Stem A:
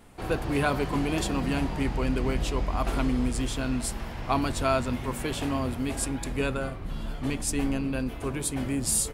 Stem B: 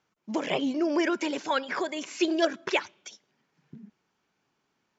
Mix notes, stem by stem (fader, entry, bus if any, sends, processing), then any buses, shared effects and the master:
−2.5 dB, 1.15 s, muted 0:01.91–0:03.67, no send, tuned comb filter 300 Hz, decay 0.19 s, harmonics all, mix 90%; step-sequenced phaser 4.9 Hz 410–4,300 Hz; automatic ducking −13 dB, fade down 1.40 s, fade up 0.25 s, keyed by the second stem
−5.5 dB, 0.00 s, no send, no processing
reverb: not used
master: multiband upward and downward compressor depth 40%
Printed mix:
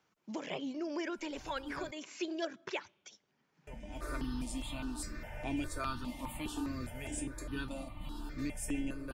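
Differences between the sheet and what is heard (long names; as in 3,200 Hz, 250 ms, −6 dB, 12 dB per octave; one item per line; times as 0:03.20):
stem A −2.5 dB → +4.0 dB
stem B −5.5 dB → −12.0 dB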